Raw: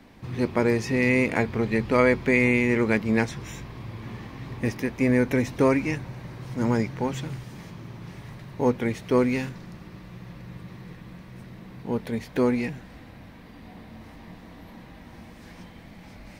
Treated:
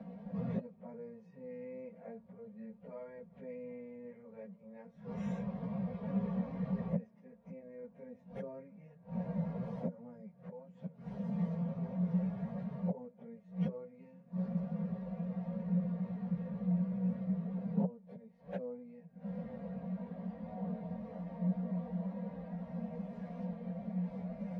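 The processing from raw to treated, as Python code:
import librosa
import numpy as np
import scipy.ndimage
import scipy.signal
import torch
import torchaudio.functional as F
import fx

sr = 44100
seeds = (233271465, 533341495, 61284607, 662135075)

y = x + 0.68 * np.pad(x, (int(4.3 * sr / 1000.0), 0))[:len(x)]
y = fx.gate_flip(y, sr, shuts_db=-23.0, range_db=-27)
y = fx.stretch_vocoder_free(y, sr, factor=1.5)
y = fx.double_bandpass(y, sr, hz=320.0, octaves=1.6)
y = F.gain(torch.from_numpy(y), 13.5).numpy()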